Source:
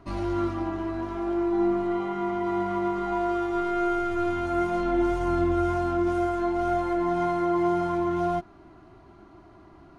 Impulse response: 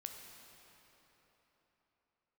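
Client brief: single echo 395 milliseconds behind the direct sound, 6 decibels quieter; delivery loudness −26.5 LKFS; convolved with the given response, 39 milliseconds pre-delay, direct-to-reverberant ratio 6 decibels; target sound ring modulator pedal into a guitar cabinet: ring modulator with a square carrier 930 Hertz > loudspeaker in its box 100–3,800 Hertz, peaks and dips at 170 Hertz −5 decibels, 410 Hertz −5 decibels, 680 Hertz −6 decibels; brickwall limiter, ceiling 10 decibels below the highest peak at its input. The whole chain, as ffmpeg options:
-filter_complex "[0:a]alimiter=limit=-24dB:level=0:latency=1,aecho=1:1:395:0.501,asplit=2[link_01][link_02];[1:a]atrim=start_sample=2205,adelay=39[link_03];[link_02][link_03]afir=irnorm=-1:irlink=0,volume=-2.5dB[link_04];[link_01][link_04]amix=inputs=2:normalize=0,aeval=exprs='val(0)*sgn(sin(2*PI*930*n/s))':channel_layout=same,highpass=100,equalizer=frequency=170:width_type=q:width=4:gain=-5,equalizer=frequency=410:width_type=q:width=4:gain=-5,equalizer=frequency=680:width_type=q:width=4:gain=-6,lowpass=frequency=3800:width=0.5412,lowpass=frequency=3800:width=1.3066,volume=4.5dB"

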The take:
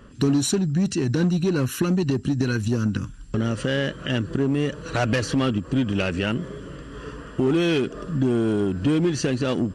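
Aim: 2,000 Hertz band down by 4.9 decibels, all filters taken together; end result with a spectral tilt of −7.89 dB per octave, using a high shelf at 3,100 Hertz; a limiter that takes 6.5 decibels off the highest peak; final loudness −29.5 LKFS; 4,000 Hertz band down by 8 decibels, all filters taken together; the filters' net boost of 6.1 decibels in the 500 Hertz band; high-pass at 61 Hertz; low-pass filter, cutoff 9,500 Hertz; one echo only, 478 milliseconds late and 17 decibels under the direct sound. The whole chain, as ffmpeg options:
ffmpeg -i in.wav -af "highpass=61,lowpass=9500,equalizer=frequency=500:width_type=o:gain=8.5,equalizer=frequency=2000:width_type=o:gain=-4.5,highshelf=frequency=3100:gain=-5.5,equalizer=frequency=4000:width_type=o:gain=-5,alimiter=limit=-14dB:level=0:latency=1,aecho=1:1:478:0.141,volume=-6dB" out.wav

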